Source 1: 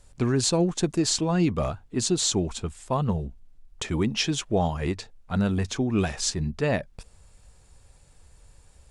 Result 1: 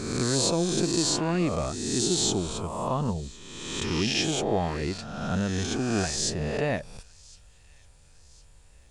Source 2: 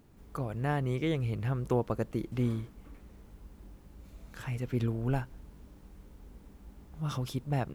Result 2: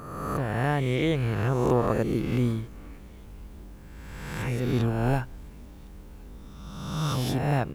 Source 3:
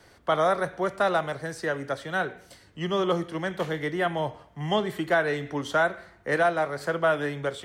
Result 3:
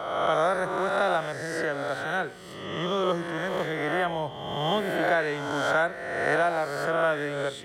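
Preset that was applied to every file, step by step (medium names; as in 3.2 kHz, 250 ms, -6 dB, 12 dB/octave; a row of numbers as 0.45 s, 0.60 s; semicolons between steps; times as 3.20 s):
reverse spectral sustain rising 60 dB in 1.37 s; feedback echo behind a high-pass 1058 ms, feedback 48%, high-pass 2.5 kHz, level -23.5 dB; normalise loudness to -27 LUFS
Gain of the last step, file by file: -4.5 dB, +4.0 dB, -3.5 dB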